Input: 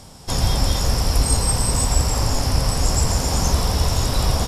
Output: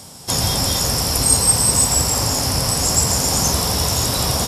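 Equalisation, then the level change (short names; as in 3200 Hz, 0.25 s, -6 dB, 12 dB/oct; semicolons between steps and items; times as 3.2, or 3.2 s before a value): HPF 97 Hz 12 dB/oct; high shelf 6200 Hz +10.5 dB; +2.0 dB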